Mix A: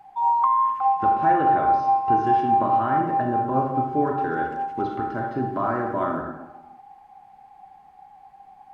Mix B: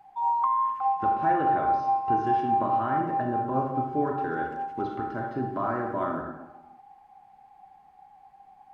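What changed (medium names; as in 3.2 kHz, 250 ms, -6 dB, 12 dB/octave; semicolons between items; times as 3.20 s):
speech -4.0 dB; background -5.0 dB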